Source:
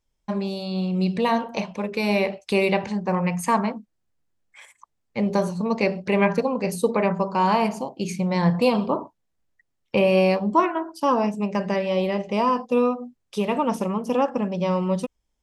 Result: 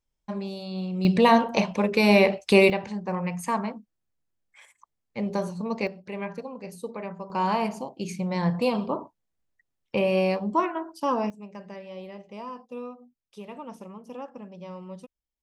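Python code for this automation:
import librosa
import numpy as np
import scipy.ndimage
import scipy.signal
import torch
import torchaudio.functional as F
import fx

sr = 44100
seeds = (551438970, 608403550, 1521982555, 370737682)

y = fx.gain(x, sr, db=fx.steps((0.0, -6.0), (1.05, 4.0), (2.7, -6.0), (5.87, -14.0), (7.3, -5.0), (11.3, -17.0)))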